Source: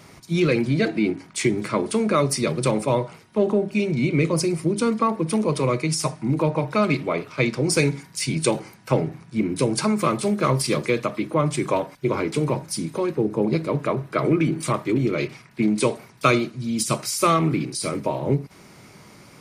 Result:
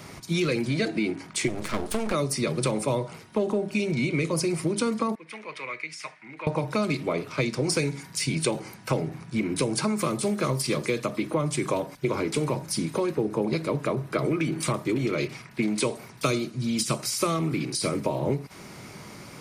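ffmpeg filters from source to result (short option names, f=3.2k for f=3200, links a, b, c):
-filter_complex "[0:a]asplit=3[a][b][c];[a]afade=t=out:st=1.47:d=0.02[d];[b]aeval=exprs='max(val(0),0)':c=same,afade=t=in:st=1.47:d=0.02,afade=t=out:st=2.12:d=0.02[e];[c]afade=t=in:st=2.12:d=0.02[f];[d][e][f]amix=inputs=3:normalize=0,asettb=1/sr,asplit=3[g][h][i];[g]atrim=end=5.154[j];[h]atrim=start=5.15:end=6.47,asetpts=PTS-STARTPTS,afade=t=in:d=0.004:c=qsin,afade=t=out:st=1.316:d=0.004:c=qsin,bandpass=f=2.1k:t=q:w=3.1[k];[i]atrim=start=6.466[l];[j][k]acrossfade=d=0.004:c1=hsin:c2=qsin[m];[m][l]acrossfade=d=0.004:c1=qsin:c2=hsin,acrossover=split=580|4600[n][o][p];[n]acompressor=threshold=-30dB:ratio=4[q];[o]acompressor=threshold=-36dB:ratio=4[r];[p]acompressor=threshold=-35dB:ratio=4[s];[q][r][s]amix=inputs=3:normalize=0,volume=4dB"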